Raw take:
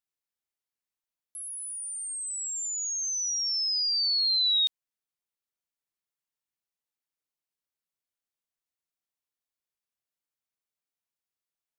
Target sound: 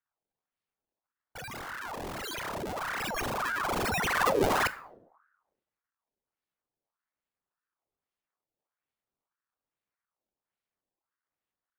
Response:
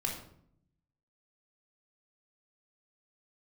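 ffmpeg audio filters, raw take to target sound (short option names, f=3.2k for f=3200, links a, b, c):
-filter_complex "[0:a]asettb=1/sr,asplit=3[a][b][c];[a]atrim=end=4.144[d];[b]atrim=start=4.14:end=4.62,asetpts=PTS-STARTPTS,afade=t=in:d=0.004:c=qsin,afade=t=out:st=0.476:d=0.004:c=qsin,aeval=exprs='val(0)+0.0501*sin(2*PI*4200*n/s)':c=same[e];[c]atrim=start=4.616[f];[d][e]acrossfade=d=0.004:c1=hsin:c2=qsin[g];[g][f]acrossfade=d=0.004:c1=qsin:c2=hsin,acrusher=samples=36:mix=1:aa=0.000001:lfo=1:lforange=57.6:lforate=1.2,asplit=2[h][i];[1:a]atrim=start_sample=2205,highshelf=f=8.5k:g=10[j];[i][j]afir=irnorm=-1:irlink=0,volume=-15.5dB[k];[h][k]amix=inputs=2:normalize=0,aeval=exprs='val(0)*sin(2*PI*950*n/s+950*0.6/1.7*sin(2*PI*1.7*n/s))':c=same,volume=-1.5dB"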